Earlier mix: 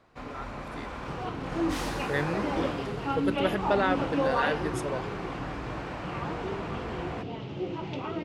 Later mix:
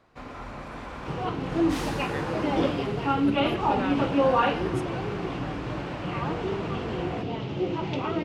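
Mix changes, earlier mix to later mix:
speech -7.0 dB; second sound +5.5 dB

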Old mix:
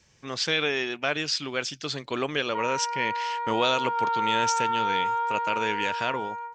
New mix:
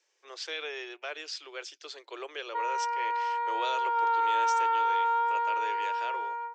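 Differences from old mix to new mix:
speech -11.0 dB; master: add steep high-pass 340 Hz 72 dB/oct

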